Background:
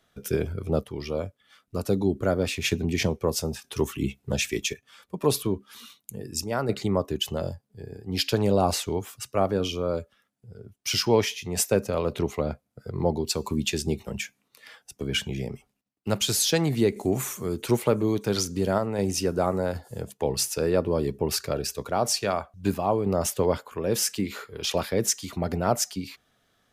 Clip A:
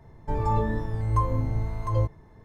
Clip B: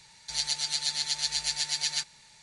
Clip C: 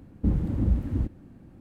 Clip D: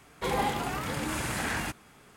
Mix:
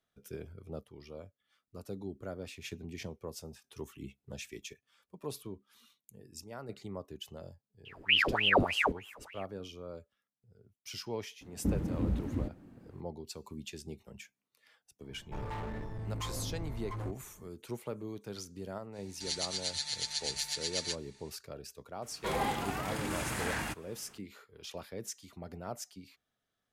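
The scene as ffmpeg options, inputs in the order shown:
ffmpeg -i bed.wav -i cue0.wav -i cue1.wav -i cue2.wav -i cue3.wav -filter_complex "[3:a]asplit=2[link_01][link_02];[0:a]volume=-17.5dB[link_03];[link_01]aeval=exprs='val(0)*sin(2*PI*1600*n/s+1600*0.9/3.3*sin(2*PI*3.3*n/s))':channel_layout=same[link_04];[link_02]lowshelf=frequency=150:gain=-10[link_05];[1:a]volume=28.5dB,asoftclip=hard,volume=-28.5dB[link_06];[link_04]atrim=end=1.6,asetpts=PTS-STARTPTS,volume=-0.5dB,afade=type=in:duration=0.004:curve=hsin,afade=type=out:start_time=1.596:duration=0.004:curve=hsin,adelay=7850[link_07];[link_05]atrim=end=1.6,asetpts=PTS-STARTPTS,volume=-1.5dB,afade=type=in:duration=0.004:curve=hsin,afade=type=out:start_time=1.596:duration=0.004:curve=hsin,adelay=11410[link_08];[link_06]atrim=end=2.44,asetpts=PTS-STARTPTS,volume=-8.5dB,afade=type=in:duration=0.004:curve=hsin,afade=type=out:start_time=2.436:duration=0.004:curve=hsin,adelay=15040[link_09];[2:a]atrim=end=2.42,asetpts=PTS-STARTPTS,volume=-6.5dB,afade=type=in:duration=0.05,afade=type=out:start_time=2.37:duration=0.05,adelay=834372S[link_10];[4:a]atrim=end=2.16,asetpts=PTS-STARTPTS,volume=-4dB,afade=type=in:duration=0.004:curve=hsin,afade=type=out:start_time=2.156:duration=0.004:curve=hsin,adelay=22020[link_11];[link_03][link_07][link_08][link_09][link_10][link_11]amix=inputs=6:normalize=0" out.wav

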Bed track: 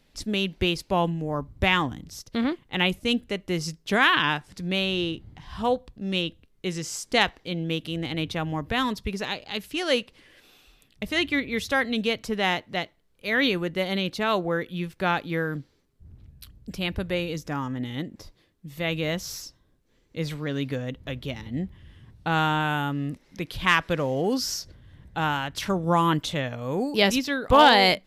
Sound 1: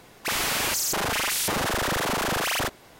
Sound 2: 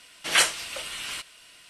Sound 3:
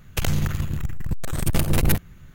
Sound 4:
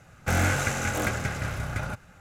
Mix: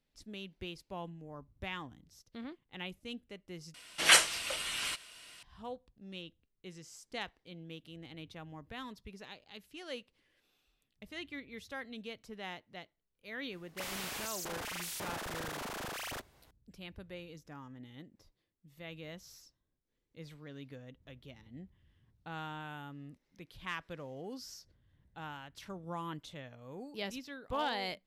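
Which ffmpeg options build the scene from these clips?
ffmpeg -i bed.wav -i cue0.wav -i cue1.wav -filter_complex "[0:a]volume=-19.5dB,asplit=2[link_01][link_02];[link_01]atrim=end=3.744[link_03];[2:a]atrim=end=1.69,asetpts=PTS-STARTPTS,volume=-2dB[link_04];[link_02]atrim=start=5.426[link_05];[1:a]atrim=end=2.99,asetpts=PTS-STARTPTS,volume=-15.5dB,afade=type=in:duration=0.004:curve=hsin,afade=type=out:start_time=2.986:duration=0.004:curve=hsin,adelay=13520[link_06];[link_03][link_04]acrossfade=duration=0.004:curve1=hsin:curve2=hsin[link_07];[link_07][link_05]acrossfade=duration=0.004:curve1=hsin:curve2=hsin[link_08];[link_08][link_06]amix=inputs=2:normalize=0" out.wav

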